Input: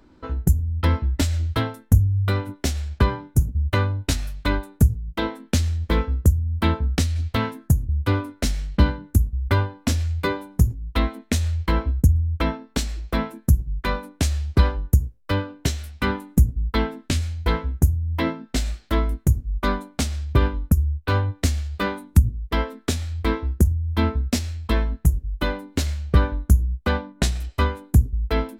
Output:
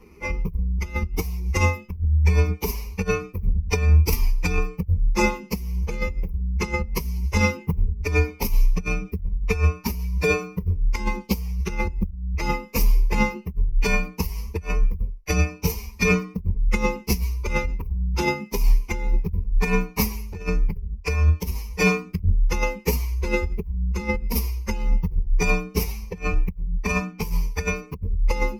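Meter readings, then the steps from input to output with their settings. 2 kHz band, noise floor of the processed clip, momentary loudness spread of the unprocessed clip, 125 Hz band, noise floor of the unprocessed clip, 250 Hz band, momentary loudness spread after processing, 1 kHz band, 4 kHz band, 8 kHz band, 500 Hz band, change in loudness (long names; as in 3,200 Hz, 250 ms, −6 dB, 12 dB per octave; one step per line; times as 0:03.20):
+3.5 dB, −43 dBFS, 7 LU, −3.5 dB, −55 dBFS, −2.5 dB, 8 LU, −1.5 dB, −4.5 dB, −1.5 dB, +1.5 dB, −1.5 dB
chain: partials spread apart or drawn together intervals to 127%
compressor whose output falls as the input rises −25 dBFS, ratio −0.5
EQ curve with evenly spaced ripples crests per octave 0.82, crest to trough 17 dB
level +2.5 dB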